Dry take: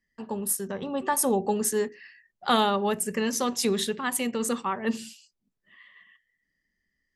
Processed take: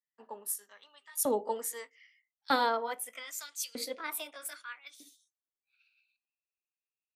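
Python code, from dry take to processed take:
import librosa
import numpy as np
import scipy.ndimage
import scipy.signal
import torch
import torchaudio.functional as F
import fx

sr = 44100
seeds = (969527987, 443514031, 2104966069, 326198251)

y = fx.pitch_glide(x, sr, semitones=6.0, runs='starting unshifted')
y = fx.filter_lfo_highpass(y, sr, shape='saw_up', hz=0.8, low_hz=300.0, high_hz=3700.0, q=0.99)
y = fx.band_widen(y, sr, depth_pct=40)
y = y * 10.0 ** (-7.5 / 20.0)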